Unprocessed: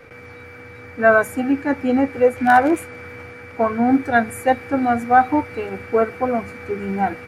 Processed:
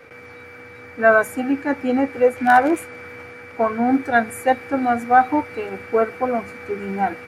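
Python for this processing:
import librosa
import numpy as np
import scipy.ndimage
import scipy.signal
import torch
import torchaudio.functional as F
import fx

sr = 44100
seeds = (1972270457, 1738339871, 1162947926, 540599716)

y = fx.low_shelf(x, sr, hz=130.0, db=-10.5)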